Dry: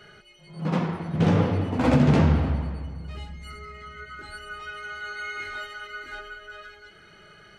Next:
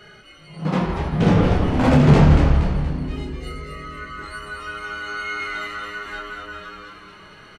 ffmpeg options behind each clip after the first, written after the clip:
-filter_complex "[0:a]asplit=2[a][b];[b]adelay=27,volume=-5.5dB[c];[a][c]amix=inputs=2:normalize=0,asplit=2[d][e];[e]asplit=6[f][g][h][i][j][k];[f]adelay=236,afreqshift=-110,volume=-5dB[l];[g]adelay=472,afreqshift=-220,volume=-11.6dB[m];[h]adelay=708,afreqshift=-330,volume=-18.1dB[n];[i]adelay=944,afreqshift=-440,volume=-24.7dB[o];[j]adelay=1180,afreqshift=-550,volume=-31.2dB[p];[k]adelay=1416,afreqshift=-660,volume=-37.8dB[q];[l][m][n][o][p][q]amix=inputs=6:normalize=0[r];[d][r]amix=inputs=2:normalize=0,volume=3.5dB"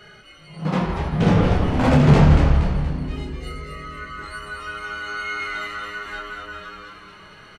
-af "equalizer=f=310:w=1.5:g=-2.5"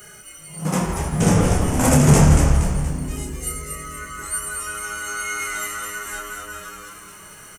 -af "aexciter=amount=13.8:drive=8:freq=6.3k"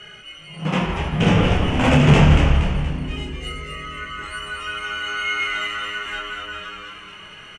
-af "lowpass=f=2.9k:t=q:w=3.8"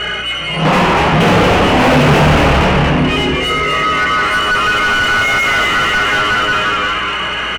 -filter_complex "[0:a]asplit=2[a][b];[b]highpass=f=720:p=1,volume=37dB,asoftclip=type=tanh:threshold=-1dB[c];[a][c]amix=inputs=2:normalize=0,lowpass=f=1.2k:p=1,volume=-6dB,aeval=exprs='val(0)+0.0178*(sin(2*PI*60*n/s)+sin(2*PI*2*60*n/s)/2+sin(2*PI*3*60*n/s)/3+sin(2*PI*4*60*n/s)/4+sin(2*PI*5*60*n/s)/5)':c=same"

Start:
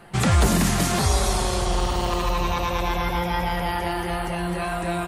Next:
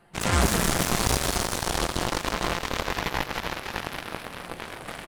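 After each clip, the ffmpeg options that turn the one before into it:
-filter_complex "[0:a]asplit=8[a][b][c][d][e][f][g][h];[b]adelay=297,afreqshift=-48,volume=-3.5dB[i];[c]adelay=594,afreqshift=-96,volume=-9.2dB[j];[d]adelay=891,afreqshift=-144,volume=-14.9dB[k];[e]adelay=1188,afreqshift=-192,volume=-20.5dB[l];[f]adelay=1485,afreqshift=-240,volume=-26.2dB[m];[g]adelay=1782,afreqshift=-288,volume=-31.9dB[n];[h]adelay=2079,afreqshift=-336,volume=-37.6dB[o];[a][i][j][k][l][m][n][o]amix=inputs=8:normalize=0,aeval=exprs='0.355*(cos(1*acos(clip(val(0)/0.355,-1,1)))-cos(1*PI/2))+0.141*(cos(3*acos(clip(val(0)/0.355,-1,1)))-cos(3*PI/2))+0.00501*(cos(5*acos(clip(val(0)/0.355,-1,1)))-cos(5*PI/2))':c=same,alimiter=limit=-16.5dB:level=0:latency=1:release=15,volume=7dB"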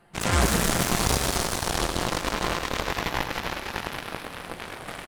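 -af "aecho=1:1:101:0.355"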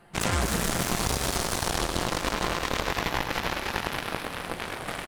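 -af "acompressor=threshold=-24dB:ratio=6,volume=3dB"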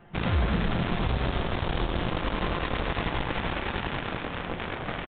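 -af "lowshelf=f=300:g=6.5,aresample=8000,asoftclip=type=hard:threshold=-18.5dB,aresample=44100"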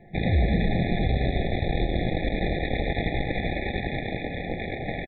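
-af "afftfilt=real='re*eq(mod(floor(b*sr/1024/840),2),0)':imag='im*eq(mod(floor(b*sr/1024/840),2),0)':win_size=1024:overlap=0.75,volume=3.5dB"

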